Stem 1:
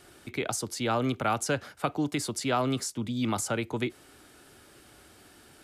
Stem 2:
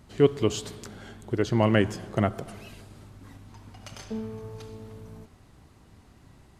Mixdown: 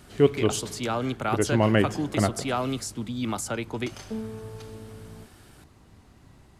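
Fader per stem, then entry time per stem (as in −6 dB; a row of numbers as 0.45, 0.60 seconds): −0.5, +0.5 decibels; 0.00, 0.00 seconds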